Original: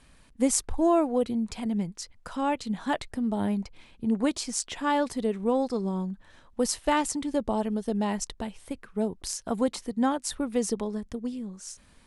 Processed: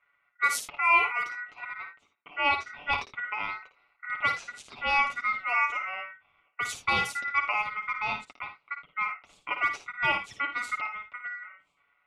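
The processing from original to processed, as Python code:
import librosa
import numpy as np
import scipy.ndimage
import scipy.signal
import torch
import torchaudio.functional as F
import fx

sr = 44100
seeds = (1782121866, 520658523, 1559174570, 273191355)

y = scipy.signal.sosfilt(scipy.signal.butter(2, 300.0, 'highpass', fs=sr, output='sos'), x)
y = fx.env_lowpass(y, sr, base_hz=430.0, full_db=-22.0)
y = fx.lowpass(y, sr, hz=1200.0, slope=6)
y = fx.tilt_eq(y, sr, slope=2.0)
y = y + 0.69 * np.pad(y, (int(7.2 * sr / 1000.0), 0))[:len(y)]
y = y * np.sin(2.0 * np.pi * 1700.0 * np.arange(len(y)) / sr)
y = fx.room_early_taps(y, sr, ms=(55, 79), db=(-8.5, -15.0))
y = y * librosa.db_to_amplitude(4.0)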